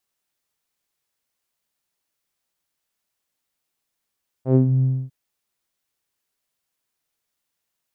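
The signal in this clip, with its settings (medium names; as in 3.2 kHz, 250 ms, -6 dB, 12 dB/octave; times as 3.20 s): synth note saw C3 12 dB/octave, low-pass 160 Hz, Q 2, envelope 2 oct, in 0.27 s, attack 102 ms, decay 0.10 s, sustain -6.5 dB, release 0.27 s, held 0.38 s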